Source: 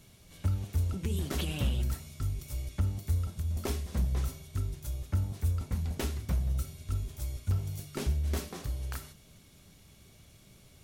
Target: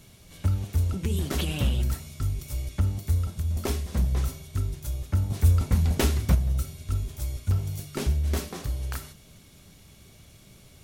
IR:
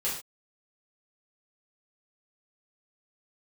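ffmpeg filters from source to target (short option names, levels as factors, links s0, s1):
-filter_complex "[0:a]asettb=1/sr,asplit=3[s0][s1][s2];[s0]atrim=end=5.304[s3];[s1]atrim=start=5.3:end=6.35,asetpts=PTS-STARTPTS,afade=t=in:d=0.004:c=qsin,afade=t=out:st=1.046:d=0.004:c=qsin,acontrast=33[s4];[s2]atrim=start=6.346[s5];[s3][s4]acrossfade=d=0.004:c1=hsin:c2=qsin[s6];[s6][s5]acrossfade=d=0.004:c1=qsin:c2=hsin,volume=1.78"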